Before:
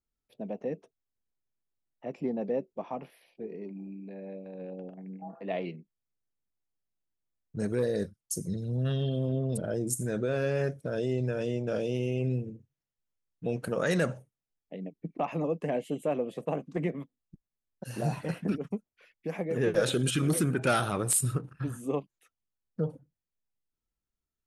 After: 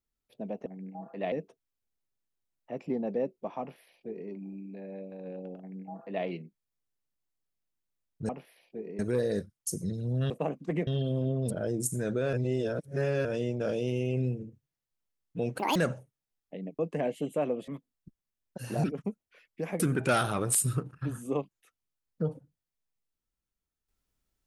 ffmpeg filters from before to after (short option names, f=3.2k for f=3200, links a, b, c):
-filter_complex "[0:a]asplit=15[a][b][c][d][e][f][g][h][i][j][k][l][m][n][o];[a]atrim=end=0.662[p];[b]atrim=start=4.928:end=5.592[q];[c]atrim=start=0.658:end=7.632[r];[d]atrim=start=2.938:end=3.642[s];[e]atrim=start=7.628:end=8.942[t];[f]atrim=start=16.368:end=16.942[u];[g]atrim=start=8.938:end=10.402[v];[h]atrim=start=10.398:end=11.322,asetpts=PTS-STARTPTS,areverse[w];[i]atrim=start=11.318:end=13.664[x];[j]atrim=start=13.66:end=13.95,asetpts=PTS-STARTPTS,asetrate=76293,aresample=44100,atrim=end_sample=7392,asetpts=PTS-STARTPTS[y];[k]atrim=start=13.946:end=14.982[z];[l]atrim=start=15.478:end=16.372[aa];[m]atrim=start=16.938:end=18.102[ab];[n]atrim=start=18.498:end=19.462[ac];[o]atrim=start=20.378[ad];[p][q]acrossfade=d=0.004:c1=hsin:c2=hsin[ae];[ae][r]acrossfade=d=0.004:c1=hsin:c2=hsin[af];[af][s]acrossfade=d=0.004:c1=hsin:c2=hsin[ag];[ag][t]acrossfade=d=0.004:c1=hsin:c2=hsin[ah];[ah][u]acrossfade=d=0.004:c1=hsin:c2=hsin[ai];[ai][v]acrossfade=d=0.004:c1=hsin:c2=hsin[aj];[aj][w]acrossfade=d=0.004:c1=hsin:c2=hsin[ak];[ak][x]acrossfade=d=0.004:c1=hsin:c2=hsin[al];[al][y]acrossfade=d=0.004:c1=hsin:c2=hsin[am];[am][z]acrossfade=d=0.004:c1=hsin:c2=hsin[an];[an][aa]acrossfade=d=0.004:c1=hsin:c2=hsin[ao];[ao][ab]acrossfade=d=0.004:c1=hsin:c2=hsin[ap];[ap][ac]acrossfade=d=0.004:c1=hsin:c2=hsin[aq];[aq][ad]acrossfade=d=0.004:c1=hsin:c2=hsin"